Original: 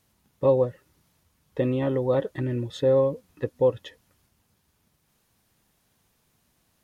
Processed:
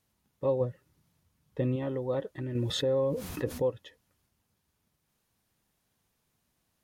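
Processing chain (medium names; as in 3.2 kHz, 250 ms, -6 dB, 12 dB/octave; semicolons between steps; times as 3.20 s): 0.60–1.76 s: peaking EQ 130 Hz +7 dB 1.7 oct; 2.55–3.62 s: level flattener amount 70%; trim -8 dB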